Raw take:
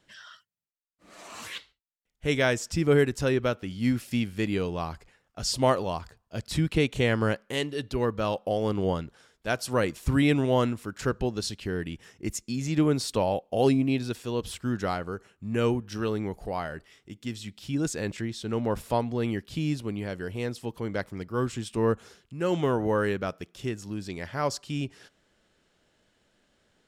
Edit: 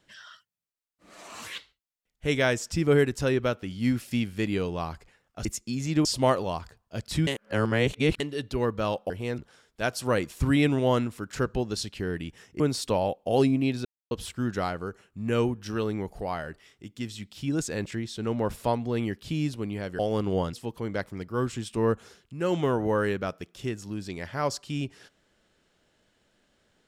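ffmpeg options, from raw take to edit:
-filter_complex "[0:a]asplit=12[s0][s1][s2][s3][s4][s5][s6][s7][s8][s9][s10][s11];[s0]atrim=end=5.452[s12];[s1]atrim=start=12.258:end=12.862[s13];[s2]atrim=start=5.448:end=6.672[s14];[s3]atrim=start=6.668:end=7.602,asetpts=PTS-STARTPTS,areverse[s15];[s4]atrim=start=7.598:end=8.502[s16];[s5]atrim=start=20.248:end=20.532[s17];[s6]atrim=start=9.038:end=12.262[s18];[s7]atrim=start=12.858:end=14.11,asetpts=PTS-STARTPTS,afade=t=out:st=1.248:d=0.004:c=hsin[s19];[s8]atrim=start=14.11:end=14.37,asetpts=PTS-STARTPTS,volume=0[s20];[s9]atrim=start=14.37:end=20.252,asetpts=PTS-STARTPTS,afade=t=in:d=0.004:c=hsin[s21];[s10]atrim=start=8.498:end=9.042[s22];[s11]atrim=start=20.528[s23];[s12][s13]acrossfade=d=0.004:c1=hsin:c2=hsin[s24];[s24][s14]acrossfade=d=0.004:c1=hsin:c2=hsin[s25];[s25][s15]acrossfade=d=0.004:c1=hsin:c2=hsin[s26];[s26][s16]acrossfade=d=0.004:c1=hsin:c2=hsin[s27];[s27][s17]acrossfade=d=0.004:c1=hsin:c2=hsin[s28];[s28][s18]acrossfade=d=0.004:c1=hsin:c2=hsin[s29];[s19][s20][s21]concat=n=3:v=0:a=1[s30];[s29][s30]acrossfade=d=0.004:c1=hsin:c2=hsin[s31];[s31][s22]acrossfade=d=0.004:c1=hsin:c2=hsin[s32];[s32][s23]acrossfade=d=0.004:c1=hsin:c2=hsin"

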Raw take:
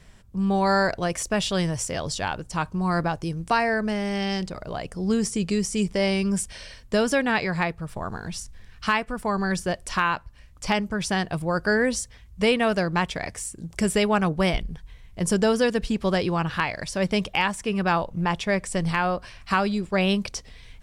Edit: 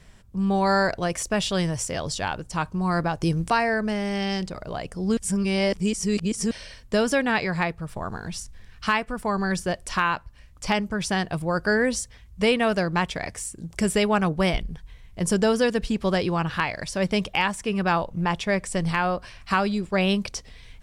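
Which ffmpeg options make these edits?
-filter_complex "[0:a]asplit=5[s0][s1][s2][s3][s4];[s0]atrim=end=3.212[s5];[s1]atrim=start=3.208:end=3.502,asetpts=PTS-STARTPTS,volume=2[s6];[s2]atrim=start=3.498:end=5.172[s7];[s3]atrim=start=5.168:end=6.512,asetpts=PTS-STARTPTS,areverse[s8];[s4]atrim=start=6.508[s9];[s5][s6]acrossfade=d=0.004:c1=hsin:c2=hsin[s10];[s10][s7]acrossfade=d=0.004:c1=hsin:c2=hsin[s11];[s11][s8]acrossfade=d=0.004:c1=hsin:c2=hsin[s12];[s12][s9]acrossfade=d=0.004:c1=hsin:c2=hsin"

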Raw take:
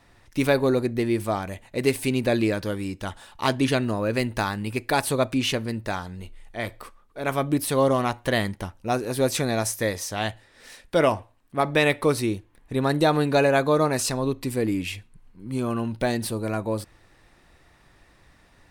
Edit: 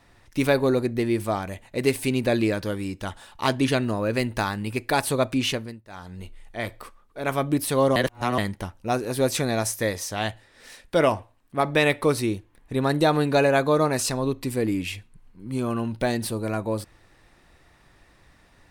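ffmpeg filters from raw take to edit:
-filter_complex "[0:a]asplit=5[s0][s1][s2][s3][s4];[s0]atrim=end=5.81,asetpts=PTS-STARTPTS,afade=t=out:st=5.48:d=0.33:silence=0.1[s5];[s1]atrim=start=5.81:end=5.88,asetpts=PTS-STARTPTS,volume=0.1[s6];[s2]atrim=start=5.88:end=7.962,asetpts=PTS-STARTPTS,afade=t=in:d=0.33:silence=0.1[s7];[s3]atrim=start=7.958:end=8.382,asetpts=PTS-STARTPTS,areverse[s8];[s4]atrim=start=8.378[s9];[s5][s6][s7]concat=n=3:v=0:a=1[s10];[s10][s8]acrossfade=d=0.004:c1=hsin:c2=hsin[s11];[s11][s9]acrossfade=d=0.004:c1=hsin:c2=hsin"

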